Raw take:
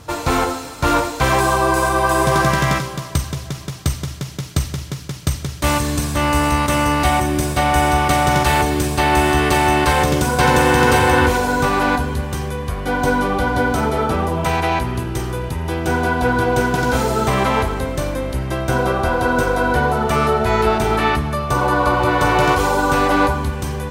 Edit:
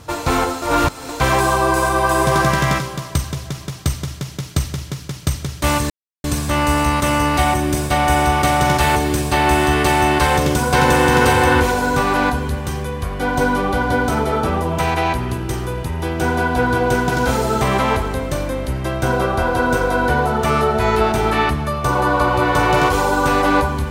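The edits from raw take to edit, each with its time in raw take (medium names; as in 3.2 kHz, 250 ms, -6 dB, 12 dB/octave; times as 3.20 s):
0.62–1.09 s: reverse
5.90 s: insert silence 0.34 s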